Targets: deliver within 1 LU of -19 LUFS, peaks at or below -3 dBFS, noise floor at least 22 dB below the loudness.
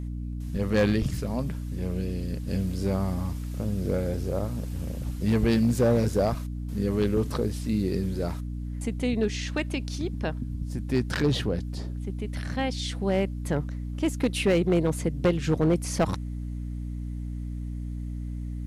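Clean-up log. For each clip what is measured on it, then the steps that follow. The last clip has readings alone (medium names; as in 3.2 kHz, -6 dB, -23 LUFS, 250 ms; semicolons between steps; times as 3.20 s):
clipped samples 0.6%; clipping level -16.0 dBFS; hum 60 Hz; highest harmonic 300 Hz; hum level -31 dBFS; loudness -28.0 LUFS; peak level -16.0 dBFS; loudness target -19.0 LUFS
-> clip repair -16 dBFS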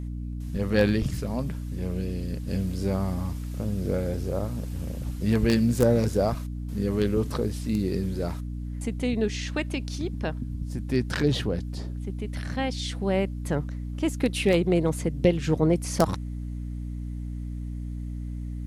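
clipped samples 0.0%; hum 60 Hz; highest harmonic 300 Hz; hum level -30 dBFS
-> de-hum 60 Hz, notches 5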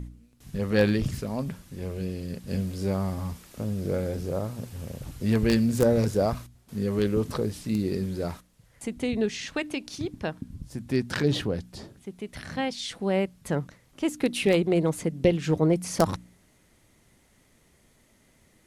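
hum not found; loudness -28.0 LUFS; peak level -7.0 dBFS; loudness target -19.0 LUFS
-> trim +9 dB; peak limiter -3 dBFS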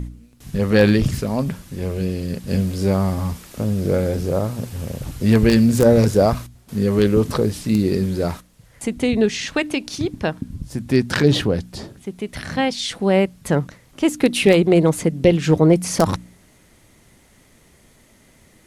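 loudness -19.5 LUFS; peak level -3.0 dBFS; noise floor -53 dBFS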